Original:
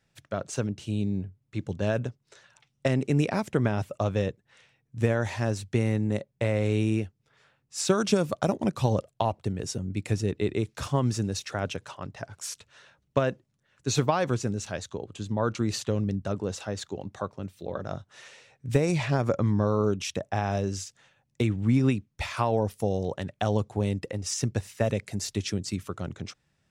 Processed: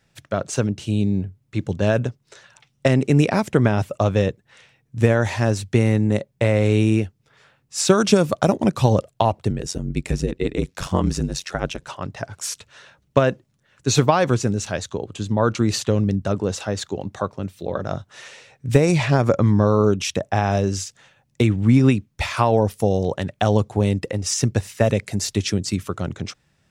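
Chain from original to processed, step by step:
0:09.50–0:11.88: ring modulation 45 Hz
level +8 dB

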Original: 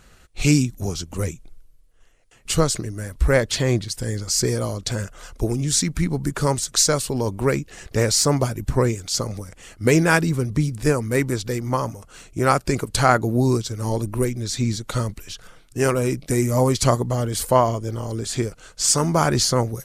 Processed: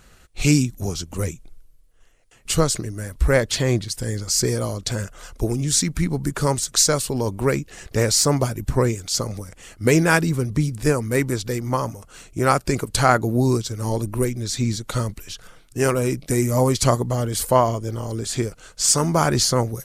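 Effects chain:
high-shelf EQ 11,000 Hz +4 dB

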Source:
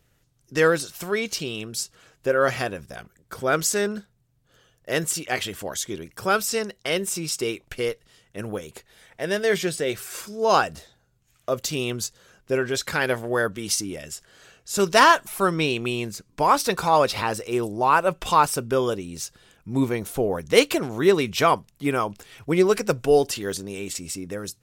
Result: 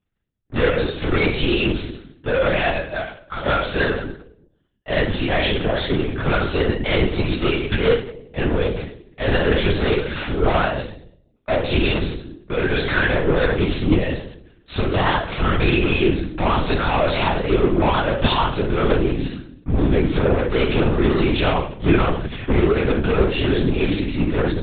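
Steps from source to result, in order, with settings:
noise gate −49 dBFS, range −16 dB
0:02.55–0:04.90: high-pass filter 540 Hz 12 dB per octave
downward compressor, threshold −23 dBFS, peak gain reduction 13 dB
leveller curve on the samples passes 3
soft clipping −20 dBFS, distortion −13 dB
convolution reverb RT60 0.65 s, pre-delay 3 ms, DRR −9.5 dB
linear-prediction vocoder at 8 kHz whisper
level −4.5 dB

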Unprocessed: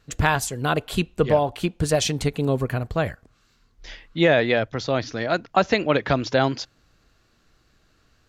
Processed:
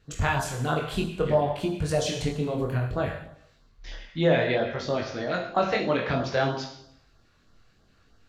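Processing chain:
high-shelf EQ 5,300 Hz −8 dB
in parallel at −2 dB: downward compressor, threshold −31 dBFS, peak gain reduction 17 dB
on the sum: four-comb reverb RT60 0.74 s, combs from 33 ms, DRR 4 dB
auto-filter notch sine 3.1 Hz 240–2,600 Hz
chorus effect 0.6 Hz, delay 20 ms, depth 5.3 ms
level −2.5 dB

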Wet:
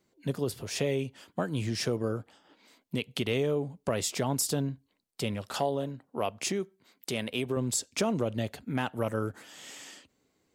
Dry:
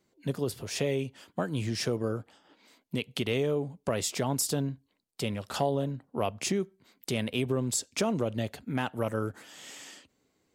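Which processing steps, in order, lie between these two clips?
0:05.48–0:07.57: low-shelf EQ 180 Hz −9 dB

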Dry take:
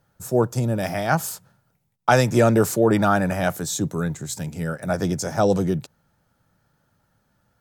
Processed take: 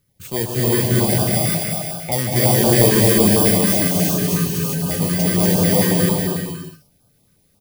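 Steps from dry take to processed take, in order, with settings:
samples in bit-reversed order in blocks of 32 samples
0:01.22–0:02.12: Butterworth low-pass 2,700 Hz
in parallel at −6 dB: wave folding −20 dBFS
on the sum: bouncing-ball delay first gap 240 ms, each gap 0.65×, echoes 5
reverb whose tail is shaped and stops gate 430 ms rising, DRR −5 dB
notch on a step sequencer 11 Hz 740–2,000 Hz
level −4 dB

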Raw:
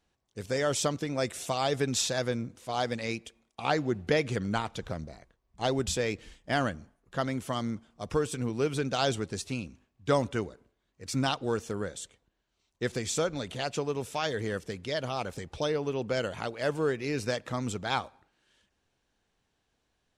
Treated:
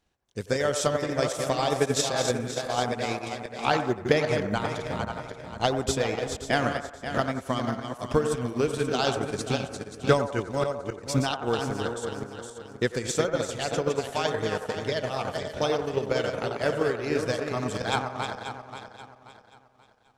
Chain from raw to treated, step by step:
feedback delay that plays each chunk backwards 266 ms, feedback 59%, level −4.5 dB
floating-point word with a short mantissa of 6 bits
delay with a band-pass on its return 89 ms, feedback 51%, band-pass 860 Hz, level −4 dB
transient designer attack +7 dB, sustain −6 dB

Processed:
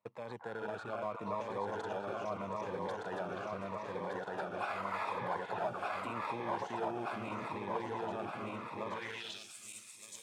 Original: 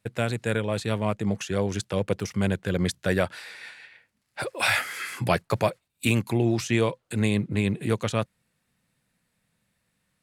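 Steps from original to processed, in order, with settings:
feedback delay that plays each chunk backwards 608 ms, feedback 76%, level −2.5 dB
brickwall limiter −18.5 dBFS, peak gain reduction 11 dB
in parallel at −5 dB: sample-rate reduction 2,900 Hz, jitter 0%
on the sum: echo through a band-pass that steps 241 ms, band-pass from 1,100 Hz, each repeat 1.4 octaves, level −2 dB
band-pass filter sweep 930 Hz → 7,900 Hz, 0:08.86–0:09.54
phaser whose notches keep moving one way falling 0.81 Hz

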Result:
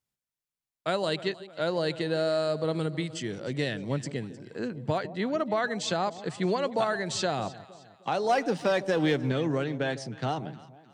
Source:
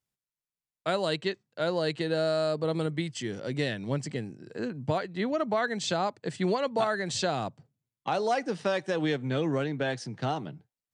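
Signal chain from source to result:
0:08.29–0:09.32: leveller curve on the samples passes 1
on a send: delay that swaps between a low-pass and a high-pass 154 ms, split 820 Hz, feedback 62%, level −14 dB

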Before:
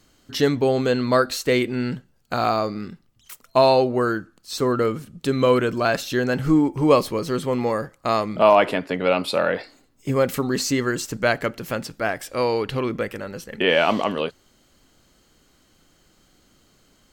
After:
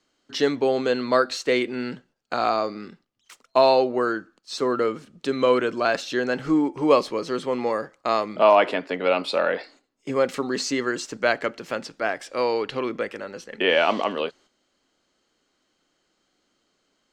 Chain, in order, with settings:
noise gate −48 dBFS, range −8 dB
three-way crossover with the lows and the highs turned down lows −16 dB, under 230 Hz, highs −24 dB, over 7,800 Hz
level −1 dB

